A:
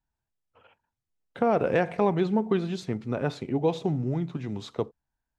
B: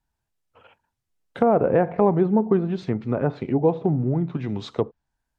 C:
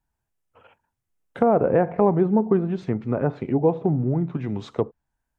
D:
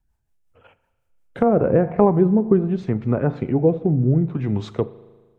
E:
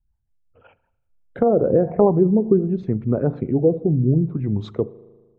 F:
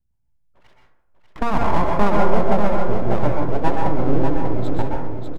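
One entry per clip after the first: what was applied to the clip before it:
treble cut that deepens with the level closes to 1,100 Hz, closed at −23.5 dBFS; level +5.5 dB
parametric band 4,200 Hz −7 dB 1 octave
low-shelf EQ 89 Hz +10.5 dB; rotating-speaker cabinet horn 5.5 Hz, later 0.65 Hz, at 0:01.29; spring reverb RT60 1.4 s, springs 38 ms, chirp 60 ms, DRR 17 dB; level +3.5 dB
spectral envelope exaggerated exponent 1.5
full-wave rectification; on a send: repeating echo 593 ms, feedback 34%, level −6 dB; on the sum: dense smooth reverb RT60 0.67 s, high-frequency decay 0.4×, pre-delay 110 ms, DRR 0 dB; level −1.5 dB

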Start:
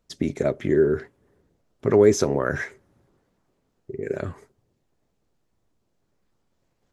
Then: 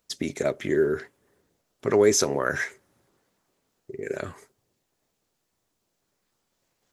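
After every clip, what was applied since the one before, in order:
spectral tilt +2.5 dB per octave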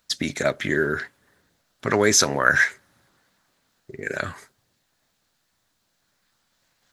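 graphic EQ with 15 bands 400 Hz −8 dB, 1,600 Hz +7 dB, 4,000 Hz +6 dB
level +4.5 dB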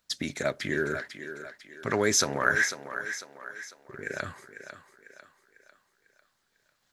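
feedback echo with a high-pass in the loop 498 ms, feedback 46%, high-pass 260 Hz, level −10 dB
level −6.5 dB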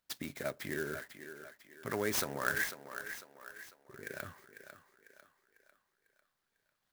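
converter with an unsteady clock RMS 0.035 ms
level −9 dB

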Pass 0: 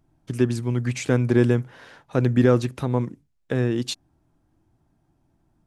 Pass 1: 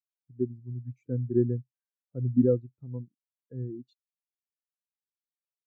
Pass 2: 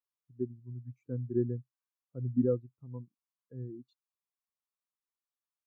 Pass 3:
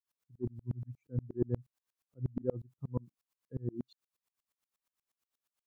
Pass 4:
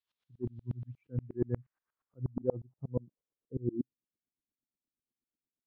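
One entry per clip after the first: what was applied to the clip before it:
every bin expanded away from the loudest bin 2.5 to 1; level −6.5 dB
parametric band 1,100 Hz +12 dB 0.64 octaves; level −6 dB
reversed playback; downward compressor 6 to 1, threshold −38 dBFS, peak gain reduction 15 dB; reversed playback; tremolo with a ramp in dB swelling 8.4 Hz, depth 34 dB; level +14.5 dB
low-pass filter sweep 3,600 Hz → 280 Hz, 0:00.75–0:03.92

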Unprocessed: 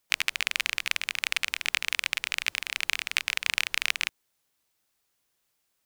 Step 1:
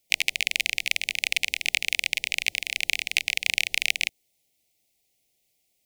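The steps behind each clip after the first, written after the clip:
elliptic band-stop filter 760–2,100 Hz, stop band 70 dB
level +4 dB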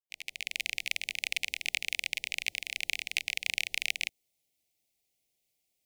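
fade in at the beginning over 0.71 s
level −7.5 dB

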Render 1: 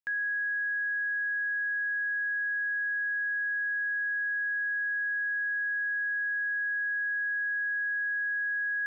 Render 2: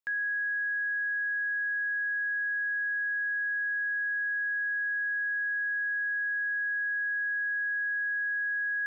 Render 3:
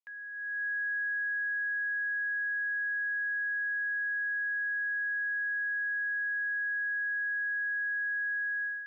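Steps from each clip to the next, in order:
mains-hum notches 60/120/180/240/300/360 Hz
resonant band-pass 1,600 Hz, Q 1.1; automatic gain control gain up to 12 dB; parametric band 1,500 Hz −14 dB 0.36 octaves; level −5.5 dB

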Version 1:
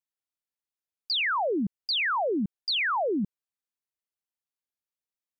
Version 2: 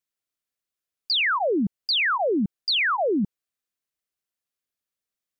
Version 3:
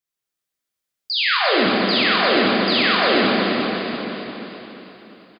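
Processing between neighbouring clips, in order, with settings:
notch filter 890 Hz, Q 5.3; level +4.5 dB
repeating echo 346 ms, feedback 42%, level −7.5 dB; convolution reverb RT60 3.5 s, pre-delay 15 ms, DRR −6 dB; level −1.5 dB

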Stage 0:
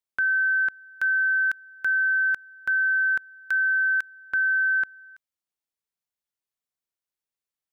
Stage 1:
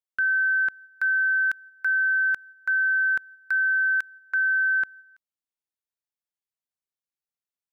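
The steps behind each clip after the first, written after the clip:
noise gate −43 dBFS, range −7 dB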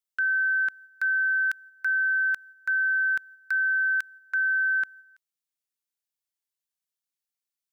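high-shelf EQ 2,000 Hz +11 dB
level −6 dB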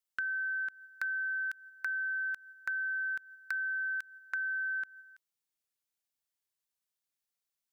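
downward compressor, threshold −34 dBFS, peak gain reduction 10 dB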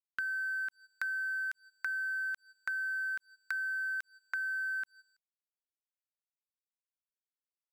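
dead-zone distortion −55 dBFS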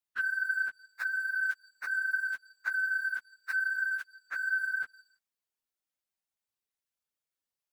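random phases in long frames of 50 ms
level +3.5 dB

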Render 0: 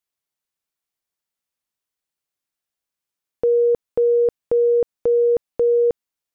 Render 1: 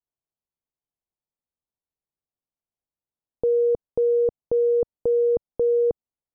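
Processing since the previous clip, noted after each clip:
low-pass filter 1,000 Hz 24 dB per octave
low-shelf EQ 180 Hz +7 dB
level −4.5 dB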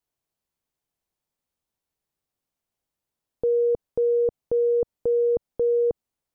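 brickwall limiter −25.5 dBFS, peak gain reduction 10 dB
level +8 dB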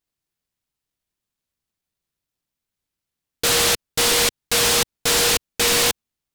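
short delay modulated by noise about 3,600 Hz, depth 0.5 ms
level +3 dB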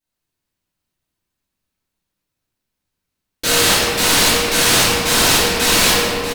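single-tap delay 640 ms −11.5 dB
convolution reverb RT60 2.9 s, pre-delay 3 ms, DRR −11.5 dB
level −5.5 dB

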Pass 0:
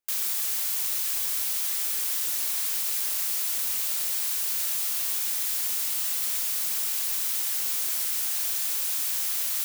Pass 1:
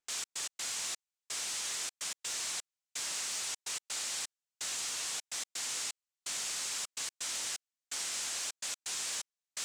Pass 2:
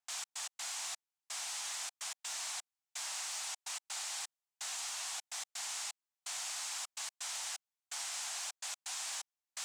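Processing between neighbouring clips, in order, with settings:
Chebyshev low-pass filter 7,700 Hz, order 3; in parallel at −7 dB: gain into a clipping stage and back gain 34.5 dB; on the sum: gate pattern "xx.x.xxx...xxx" 127 BPM −60 dB; level −3.5 dB
low shelf with overshoot 560 Hz −10.5 dB, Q 3; level −4 dB

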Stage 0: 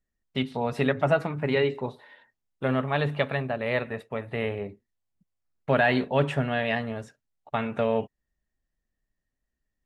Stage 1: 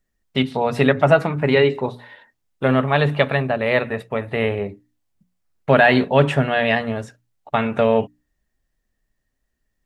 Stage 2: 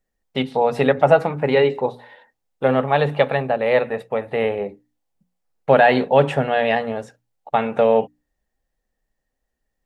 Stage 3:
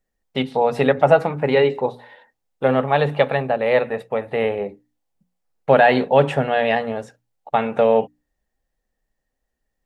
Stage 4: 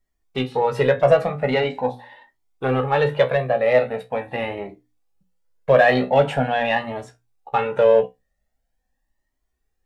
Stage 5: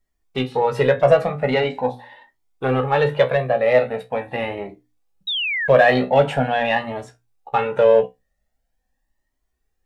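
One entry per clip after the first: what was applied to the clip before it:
mains-hum notches 60/120/180/240/300 Hz; level +8.5 dB
thirty-one-band graphic EQ 100 Hz −11 dB, 500 Hz +9 dB, 800 Hz +9 dB; level −3.5 dB
no processing that can be heard
tuned comb filter 63 Hz, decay 0.18 s, harmonics all, mix 80%; in parallel at −8.5 dB: soft clipping −22 dBFS, distortion −7 dB; on the sum: flanger whose copies keep moving one way rising 0.43 Hz; level +6 dB
sound drawn into the spectrogram fall, 0:05.27–0:05.68, 1,600–3,900 Hz −24 dBFS; level +1 dB

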